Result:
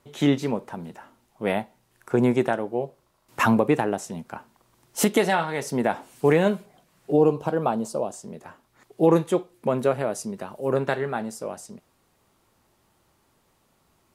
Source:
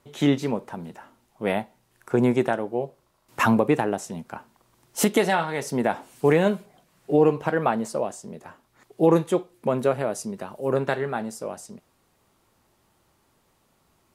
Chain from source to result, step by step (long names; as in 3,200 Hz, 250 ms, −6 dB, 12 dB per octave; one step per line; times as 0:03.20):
0:07.12–0:08.14: parametric band 1,900 Hz −14.5 dB 0.72 octaves